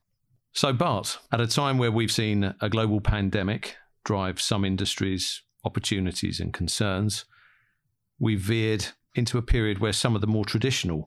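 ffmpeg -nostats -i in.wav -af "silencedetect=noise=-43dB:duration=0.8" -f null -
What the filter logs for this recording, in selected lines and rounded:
silence_start: 7.22
silence_end: 8.20 | silence_duration: 0.98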